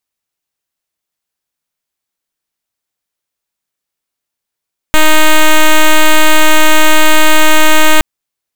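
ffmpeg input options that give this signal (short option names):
-f lavfi -i "aevalsrc='0.631*(2*lt(mod(311*t,1),0.06)-1)':d=3.07:s=44100"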